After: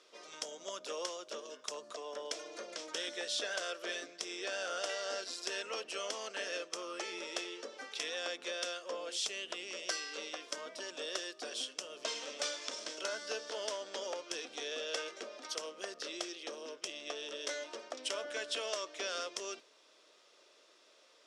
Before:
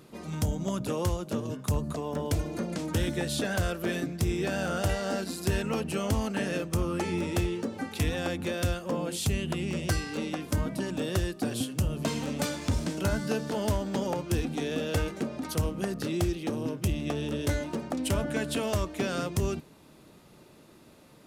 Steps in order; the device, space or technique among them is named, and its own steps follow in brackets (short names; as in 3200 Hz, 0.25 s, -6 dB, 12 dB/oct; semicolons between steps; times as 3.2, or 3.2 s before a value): phone speaker on a table (speaker cabinet 480–8000 Hz, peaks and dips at 830 Hz -9 dB, 3300 Hz +6 dB, 5500 Hz +9 dB); gain -5 dB